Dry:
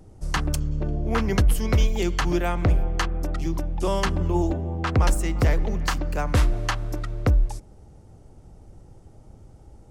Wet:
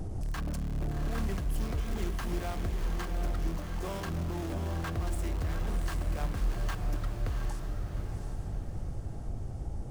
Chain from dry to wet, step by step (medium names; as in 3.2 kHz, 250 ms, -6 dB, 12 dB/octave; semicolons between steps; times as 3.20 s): small resonant body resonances 700/1100/1600 Hz, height 7 dB; in parallel at -6 dB: integer overflow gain 20 dB; on the sum: gain riding; bass shelf 210 Hz +7.5 dB; peak limiter -28 dBFS, peak gain reduction 22.5 dB; on a send: echo that smears into a reverb 738 ms, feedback 41%, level -4.5 dB